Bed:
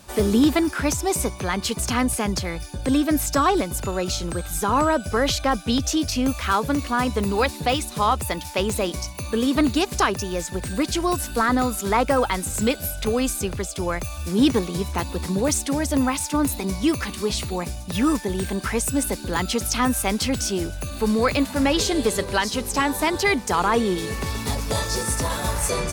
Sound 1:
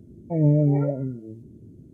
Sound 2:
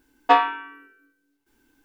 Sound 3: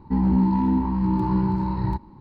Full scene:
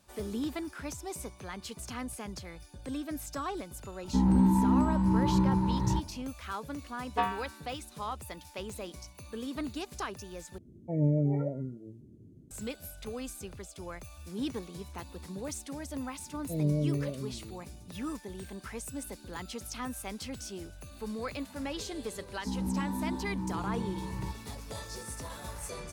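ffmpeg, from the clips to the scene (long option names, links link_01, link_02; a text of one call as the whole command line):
ffmpeg -i bed.wav -i cue0.wav -i cue1.wav -i cue2.wav -filter_complex "[3:a]asplit=2[link_01][link_02];[1:a]asplit=2[link_03][link_04];[0:a]volume=-17dB[link_05];[link_04]asuperstop=centerf=840:order=4:qfactor=2[link_06];[link_05]asplit=2[link_07][link_08];[link_07]atrim=end=10.584[link_09];[link_03]atrim=end=1.93,asetpts=PTS-STARTPTS,volume=-8dB[link_10];[link_08]atrim=start=12.506[link_11];[link_01]atrim=end=2.2,asetpts=PTS-STARTPTS,volume=-4dB,afade=type=in:duration=0.004:curve=hsin,afade=type=out:start_time=2.196:duration=0.004:curve=hsin,adelay=4030[link_12];[2:a]atrim=end=1.84,asetpts=PTS-STARTPTS,volume=-13.5dB,afade=type=in:duration=0.004:curve=hsin,afade=type=out:start_time=1.836:duration=0.004:curve=hsin,adelay=6880[link_13];[link_06]atrim=end=1.93,asetpts=PTS-STARTPTS,volume=-10dB,afade=type=in:duration=0.004:curve=hsin,afade=type=out:start_time=1.926:duration=0.004:curve=hsin,adelay=16190[link_14];[link_02]atrim=end=2.2,asetpts=PTS-STARTPTS,volume=-13.5dB,afade=type=in:duration=0.004:curve=hsin,afade=type=out:start_time=2.196:duration=0.004:curve=hsin,adelay=22350[link_15];[link_09][link_10]acrossfade=duration=0.004:curve1=hsin:curve2=hsin[link_16];[link_16][link_11]acrossfade=duration=0.004:curve1=hsin:curve2=hsin[link_17];[link_17][link_12][link_13][link_14][link_15]amix=inputs=5:normalize=0" out.wav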